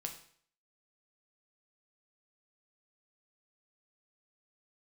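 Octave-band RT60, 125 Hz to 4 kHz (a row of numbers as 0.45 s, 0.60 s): 0.55 s, 0.55 s, 0.55 s, 0.55 s, 0.55 s, 0.55 s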